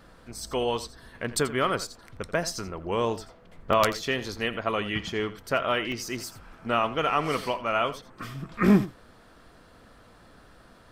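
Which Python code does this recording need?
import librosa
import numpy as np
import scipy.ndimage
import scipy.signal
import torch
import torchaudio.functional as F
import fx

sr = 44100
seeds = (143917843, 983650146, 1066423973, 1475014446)

y = fx.fix_interpolate(x, sr, at_s=(3.73, 5.92), length_ms=1.7)
y = fx.fix_echo_inverse(y, sr, delay_ms=85, level_db=-15.0)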